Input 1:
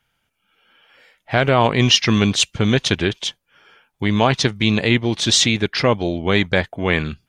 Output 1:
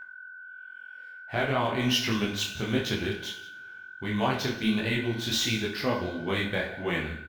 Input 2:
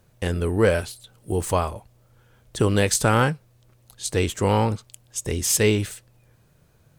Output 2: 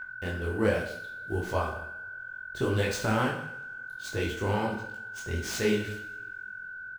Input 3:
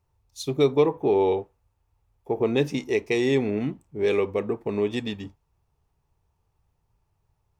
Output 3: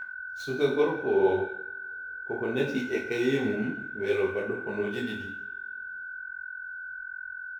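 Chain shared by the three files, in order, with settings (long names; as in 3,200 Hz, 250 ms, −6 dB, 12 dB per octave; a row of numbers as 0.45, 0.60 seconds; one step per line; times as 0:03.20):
running median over 5 samples
single-tap delay 178 ms −18 dB
steady tone 1,500 Hz −27 dBFS
coupled-rooms reverb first 0.57 s, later 2.4 s, from −25 dB, DRR 1.5 dB
micro pitch shift up and down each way 50 cents
normalise the peak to −12 dBFS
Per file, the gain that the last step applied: −9.0, −5.5, −3.5 decibels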